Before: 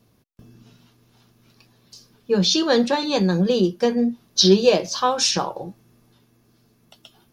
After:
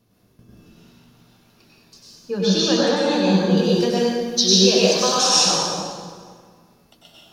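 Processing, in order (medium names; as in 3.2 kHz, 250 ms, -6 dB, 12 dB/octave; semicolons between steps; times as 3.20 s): 3.57–5.57 s: treble shelf 2.5 kHz +10.5 dB; compression 1.5:1, threshold -23 dBFS, peak gain reduction 7 dB; reverberation RT60 1.8 s, pre-delay 88 ms, DRR -7 dB; trim -4 dB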